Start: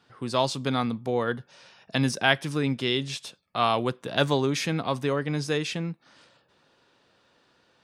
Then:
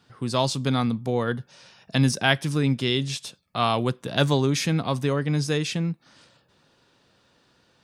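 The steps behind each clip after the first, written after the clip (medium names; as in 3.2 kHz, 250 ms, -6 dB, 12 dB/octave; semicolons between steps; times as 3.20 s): tone controls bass +7 dB, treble +5 dB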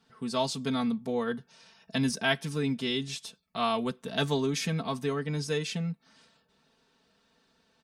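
comb 4.5 ms, depth 80%; trim -8 dB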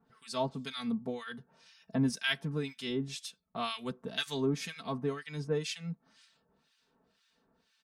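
harmonic tremolo 2 Hz, depth 100%, crossover 1.4 kHz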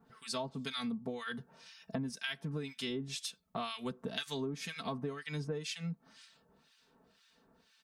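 compression 12:1, threshold -39 dBFS, peak gain reduction 15 dB; trim +4.5 dB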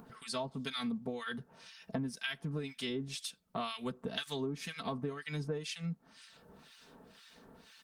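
upward compressor, threshold -47 dBFS; trim +1 dB; Opus 24 kbps 48 kHz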